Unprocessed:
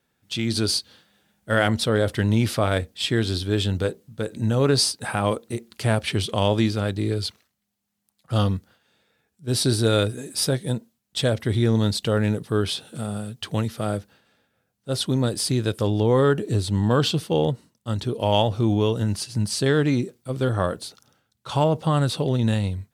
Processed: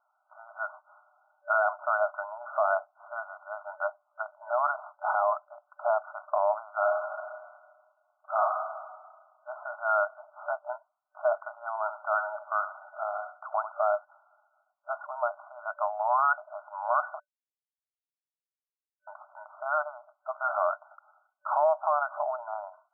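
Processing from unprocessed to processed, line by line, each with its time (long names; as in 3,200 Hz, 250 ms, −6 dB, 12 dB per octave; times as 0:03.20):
0:06.78–0:08.40: thrown reverb, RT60 1.5 s, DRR 0.5 dB
0:11.73–0:13.72: repeating echo 71 ms, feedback 30%, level −11 dB
0:17.20–0:19.07: silence
whole clip: brick-wall band-pass 590–1,500 Hz; brickwall limiter −22 dBFS; level +6.5 dB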